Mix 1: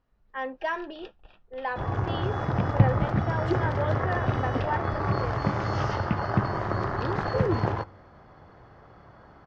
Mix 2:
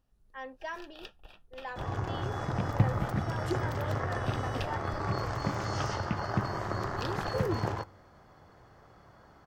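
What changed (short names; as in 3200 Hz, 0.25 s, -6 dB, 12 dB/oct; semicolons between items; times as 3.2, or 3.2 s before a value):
speech -10.5 dB; second sound -6.0 dB; master: remove air absorption 190 m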